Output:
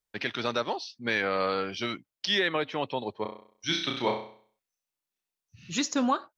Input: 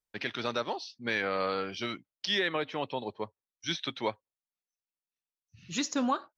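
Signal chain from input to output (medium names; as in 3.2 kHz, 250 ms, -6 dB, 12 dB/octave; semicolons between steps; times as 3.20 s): 3.22–5.70 s: flutter echo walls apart 5.6 m, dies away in 0.5 s; trim +3 dB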